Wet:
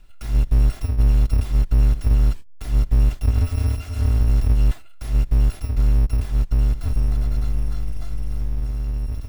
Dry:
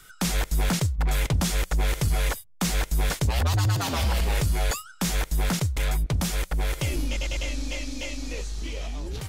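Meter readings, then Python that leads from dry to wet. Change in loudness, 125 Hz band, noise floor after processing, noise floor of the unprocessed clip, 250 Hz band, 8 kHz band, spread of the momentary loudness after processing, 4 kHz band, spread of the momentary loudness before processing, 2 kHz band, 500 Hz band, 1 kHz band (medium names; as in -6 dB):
+5.0 dB, +5.5 dB, -37 dBFS, -48 dBFS, -1.0 dB, -13.0 dB, 8 LU, -12.0 dB, 9 LU, -11.5 dB, -4.5 dB, -8.5 dB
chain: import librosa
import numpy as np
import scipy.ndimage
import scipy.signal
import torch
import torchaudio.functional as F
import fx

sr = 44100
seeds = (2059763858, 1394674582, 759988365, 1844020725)

y = fx.bit_reversed(x, sr, seeds[0], block=256)
y = fx.riaa(y, sr, side='playback')
y = F.gain(torch.from_numpy(y), -6.0).numpy()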